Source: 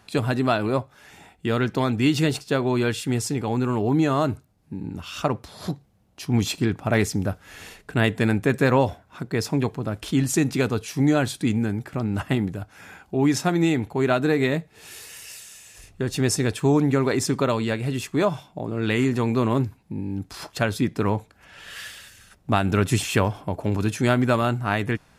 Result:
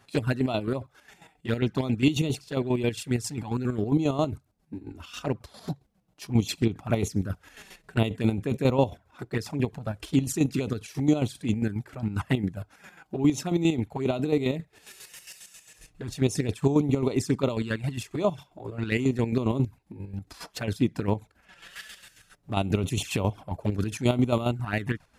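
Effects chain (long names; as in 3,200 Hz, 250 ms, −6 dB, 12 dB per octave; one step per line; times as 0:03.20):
flanger swept by the level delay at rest 7.6 ms, full sweep at −17.5 dBFS
square-wave tremolo 7.4 Hz, depth 60%, duty 40%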